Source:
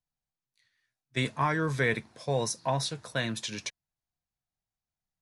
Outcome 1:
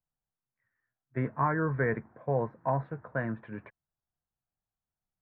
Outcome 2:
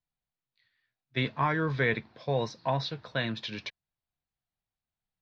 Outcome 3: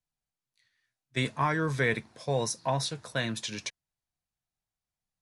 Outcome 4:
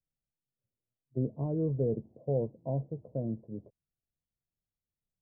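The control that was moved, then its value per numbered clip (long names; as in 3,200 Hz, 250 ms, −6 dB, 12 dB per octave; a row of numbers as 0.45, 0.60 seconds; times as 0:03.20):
Butterworth low-pass, frequency: 1,700, 4,500, 12,000, 590 Hertz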